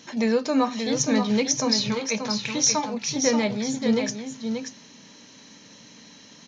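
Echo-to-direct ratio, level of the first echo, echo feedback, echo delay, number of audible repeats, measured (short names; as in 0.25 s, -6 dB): -6.5 dB, -6.5 dB, no steady repeat, 0.582 s, 1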